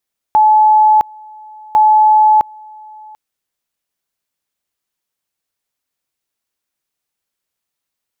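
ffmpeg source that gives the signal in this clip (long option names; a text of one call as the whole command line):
ffmpeg -f lavfi -i "aevalsrc='pow(10,(-5.5-27*gte(mod(t,1.4),0.66))/20)*sin(2*PI*859*t)':duration=2.8:sample_rate=44100" out.wav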